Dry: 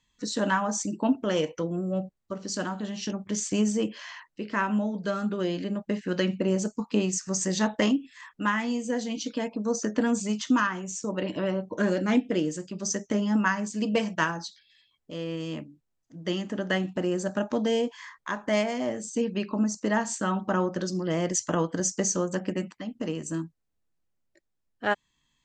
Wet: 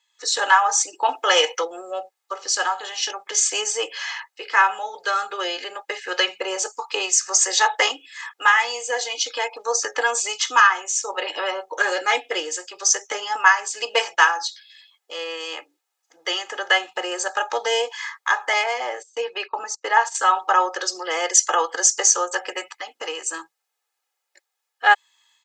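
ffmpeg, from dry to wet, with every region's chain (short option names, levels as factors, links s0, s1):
-filter_complex "[0:a]asettb=1/sr,asplit=3[s0][s1][s2];[s0]atrim=end=1.084[s3];[s1]atrim=start=1.08:end=1.65,asetpts=PTS-STARTPTS,afade=t=in:d=0.004:c=qsin,afade=t=out:st=0.566:d=0.004:c=qsin,lowshelf=f=320:g=-7,acontrast=32[s4];[s2]atrim=start=1.646[s5];[s3][s4]acrossfade=d=0.004:c1=hsin:c2=qsin[s6];[s6][s5]acrossfade=d=0.004:c1=qsin:c2=hsin,asettb=1/sr,asplit=3[s7][s8][s9];[s7]atrim=end=18.534[s10];[s8]atrim=start=18.53:end=20.15,asetpts=PTS-STARTPTS,afade=t=in:d=0.004:c=qsin,afade=t=out:st=1.616:d=0.004:c=qsin,lowpass=f=3200:p=1,agate=range=0.0794:threshold=0.0126:ratio=16:release=100:detection=peak[s11];[s9]atrim=start=20.146[s12];[s10][s11]acrossfade=d=0.004:c1=hsin:c2=qsin[s13];[s13][s12]acrossfade=d=0.004:c1=qsin:c2=hsin,highpass=f=660:w=0.5412,highpass=f=660:w=1.3066,aecho=1:1:2.4:0.78,dynaudnorm=f=130:g=3:m=2.82,volume=1.26"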